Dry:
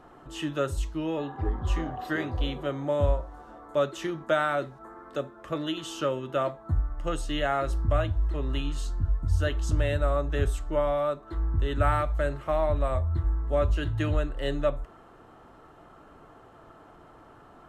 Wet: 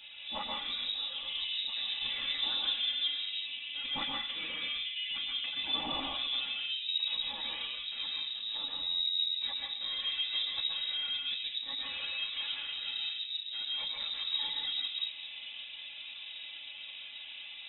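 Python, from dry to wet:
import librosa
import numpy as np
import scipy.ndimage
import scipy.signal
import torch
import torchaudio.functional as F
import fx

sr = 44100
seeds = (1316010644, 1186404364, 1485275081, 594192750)

y = fx.low_shelf(x, sr, hz=330.0, db=-5.0)
y = np.clip(y, -10.0 ** (-30.5 / 20.0), 10.0 ** (-30.5 / 20.0))
y = fx.over_compress(y, sr, threshold_db=-39.0, ratio=-1.0)
y = fx.chorus_voices(y, sr, voices=6, hz=0.81, base_ms=10, depth_ms=2.6, mix_pct=45)
y = y + 0.7 * np.pad(y, (int(3.4 * sr / 1000.0), 0))[:len(y)]
y = fx.rev_plate(y, sr, seeds[0], rt60_s=0.92, hf_ratio=0.45, predelay_ms=110, drr_db=-1.5)
y = fx.freq_invert(y, sr, carrier_hz=3800)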